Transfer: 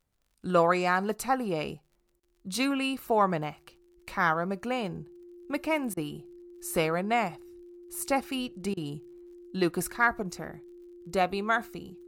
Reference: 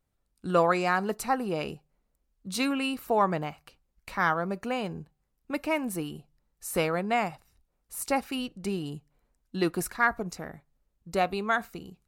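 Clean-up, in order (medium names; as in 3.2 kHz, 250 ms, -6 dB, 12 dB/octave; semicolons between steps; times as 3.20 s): de-click; band-stop 350 Hz, Q 30; interpolate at 2.20/5.94/8.74 s, 29 ms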